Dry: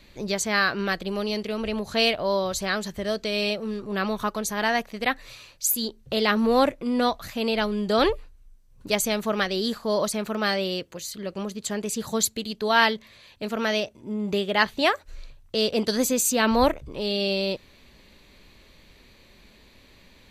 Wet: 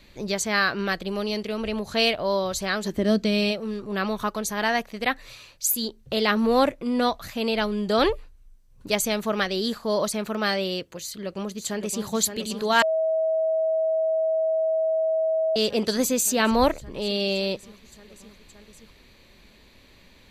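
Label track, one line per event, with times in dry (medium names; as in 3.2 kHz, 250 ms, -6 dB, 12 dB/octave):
2.830000	3.510000	peaking EQ 380 Hz -> 120 Hz +13.5 dB 1.2 oct
11.000000	12.060000	echo throw 570 ms, feedback 85%, level -7 dB
12.820000	15.560000	bleep 642 Hz -20 dBFS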